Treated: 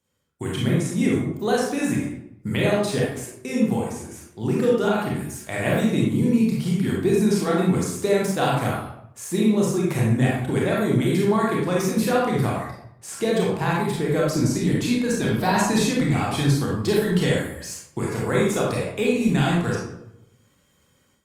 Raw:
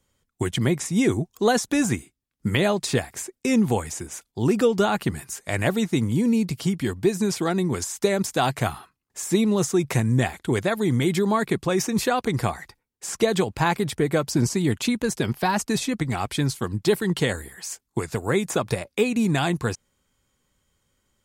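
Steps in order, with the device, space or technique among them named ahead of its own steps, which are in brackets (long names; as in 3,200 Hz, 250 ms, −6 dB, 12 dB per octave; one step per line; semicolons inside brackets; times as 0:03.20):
far-field microphone of a smart speaker (convolution reverb RT60 0.75 s, pre-delay 27 ms, DRR −4 dB; high-pass filter 85 Hz; automatic gain control; level −7.5 dB; Opus 48 kbit/s 48,000 Hz)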